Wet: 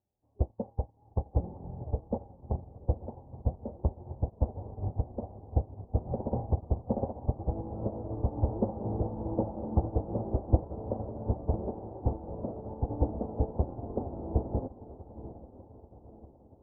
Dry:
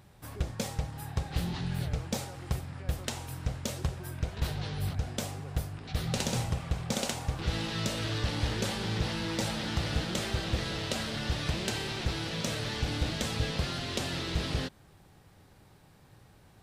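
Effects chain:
low-shelf EQ 65 Hz −6 dB
in parallel at −10 dB: bit reduction 6 bits
on the sum: Butterworth low-pass 880 Hz 48 dB per octave
parametric band 150 Hz −14.5 dB 0.37 octaves
on a send: feedback delay with all-pass diffusion 901 ms, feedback 75%, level −6.5 dB
on the sum: expander for the loud parts 2.5 to 1, over −48 dBFS
level +8.5 dB

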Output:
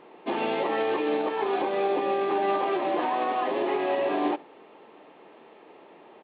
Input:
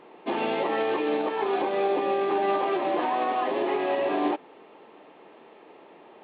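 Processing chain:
on a send: single-tap delay 70 ms −22 dB
on the sum: MP3 64 kbit/s 11,025 Hz

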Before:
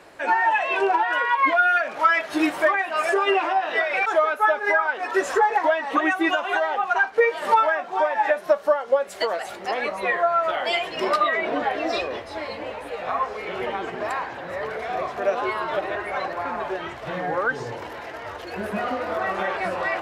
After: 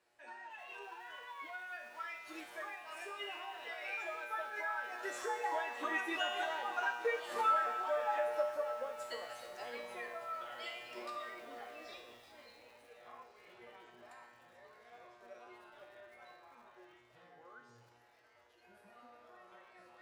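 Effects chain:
source passing by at 0:06.77, 8 m/s, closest 11 metres
high-shelf EQ 2,600 Hz +8.5 dB
tuned comb filter 120 Hz, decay 1 s, harmonics all, mix 90%
feedback echo at a low word length 305 ms, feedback 80%, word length 9 bits, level −14.5 dB
level −1.5 dB

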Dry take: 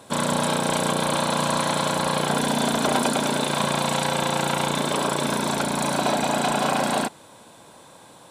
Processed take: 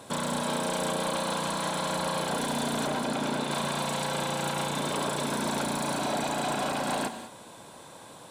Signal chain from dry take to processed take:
brickwall limiter −19.5 dBFS, peak gain reduction 11 dB
soft clipping −22 dBFS, distortion −19 dB
0:02.87–0:03.51: high-shelf EQ 5,800 Hz −8 dB
reverb whose tail is shaped and stops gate 220 ms rising, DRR 10.5 dB

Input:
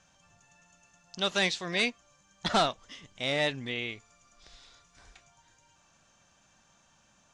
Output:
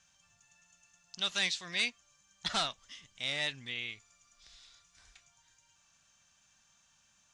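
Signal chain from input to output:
guitar amp tone stack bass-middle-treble 5-5-5
level +5.5 dB

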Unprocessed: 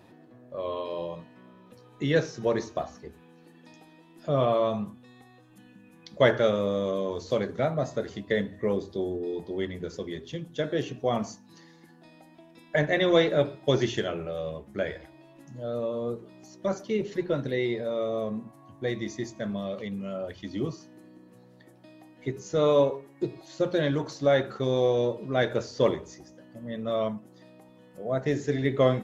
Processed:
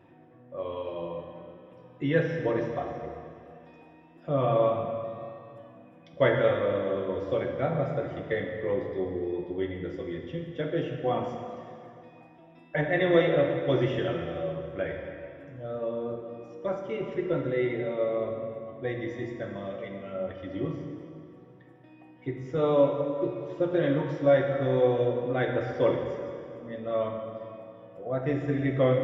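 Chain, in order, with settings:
Savitzky-Golay smoothing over 25 samples
notch comb filter 210 Hz
dense smooth reverb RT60 2.5 s, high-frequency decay 0.85×, DRR 2 dB
level −1.5 dB

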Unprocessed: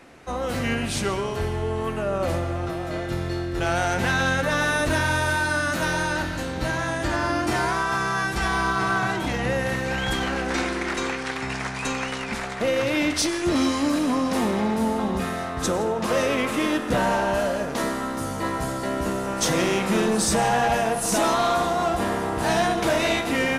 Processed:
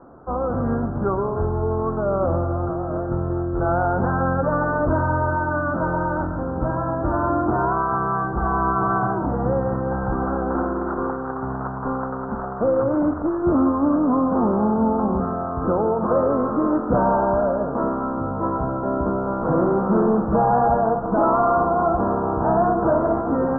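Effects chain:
Butterworth low-pass 1,400 Hz 72 dB per octave
level +4 dB

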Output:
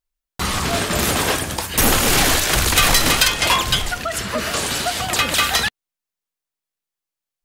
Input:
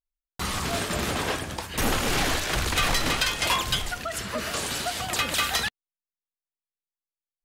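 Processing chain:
0:00.95–0:03.28: high-shelf EQ 7,400 Hz +10.5 dB
level +7.5 dB

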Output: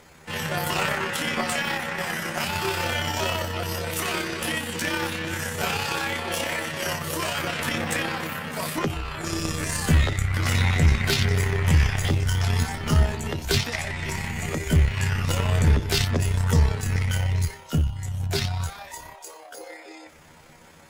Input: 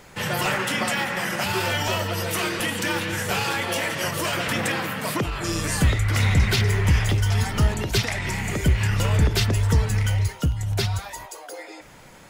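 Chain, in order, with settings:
time stretch by overlap-add 1.7×, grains 61 ms
harmonic generator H 4 −20 dB, 7 −31 dB, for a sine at −9 dBFS

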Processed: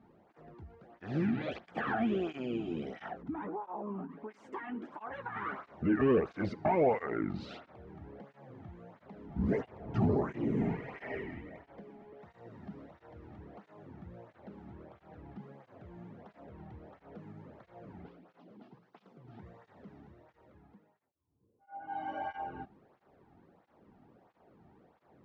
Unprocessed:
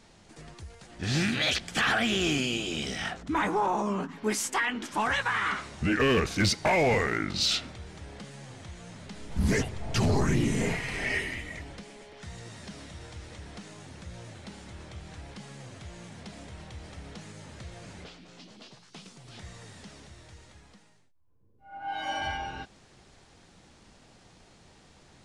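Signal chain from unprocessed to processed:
low-pass filter 1,000 Hz 12 dB per octave
0:03.21–0:05.36: downward compressor 6 to 1, threshold −35 dBFS, peak gain reduction 11 dB
through-zero flanger with one copy inverted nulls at 1.5 Hz, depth 2.1 ms

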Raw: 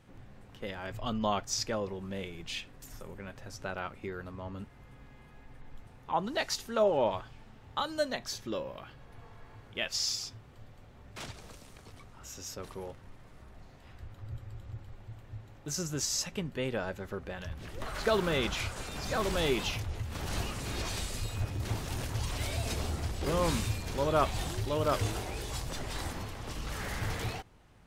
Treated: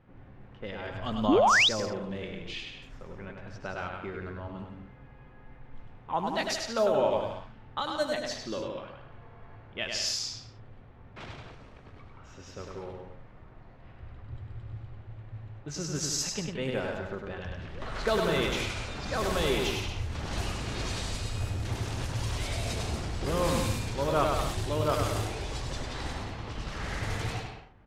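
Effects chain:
bouncing-ball delay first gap 100 ms, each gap 0.75×, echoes 5
low-pass that shuts in the quiet parts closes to 1,900 Hz, open at −25.5 dBFS
sound drawn into the spectrogram rise, 0:01.28–0:01.69, 230–4,100 Hz −21 dBFS

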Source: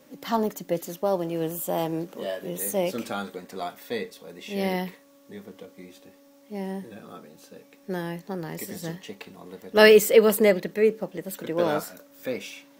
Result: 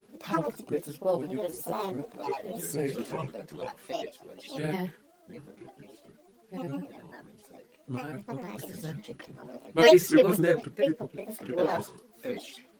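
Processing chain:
multi-voice chorus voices 4, 1.2 Hz, delay 24 ms, depth 3 ms
granular cloud, spray 18 ms, pitch spread up and down by 7 semitones
Opus 32 kbit/s 48,000 Hz

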